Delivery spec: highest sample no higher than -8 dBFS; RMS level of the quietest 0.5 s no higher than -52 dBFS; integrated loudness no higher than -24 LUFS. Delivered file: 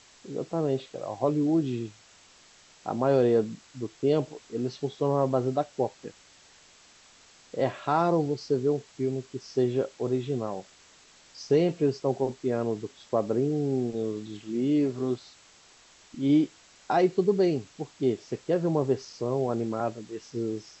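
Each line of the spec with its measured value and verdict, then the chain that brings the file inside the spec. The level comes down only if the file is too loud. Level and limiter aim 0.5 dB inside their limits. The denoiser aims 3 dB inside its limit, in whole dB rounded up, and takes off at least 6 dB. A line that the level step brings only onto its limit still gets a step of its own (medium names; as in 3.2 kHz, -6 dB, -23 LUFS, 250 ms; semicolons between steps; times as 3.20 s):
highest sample -11.5 dBFS: pass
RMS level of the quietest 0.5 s -56 dBFS: pass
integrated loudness -28.0 LUFS: pass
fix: none needed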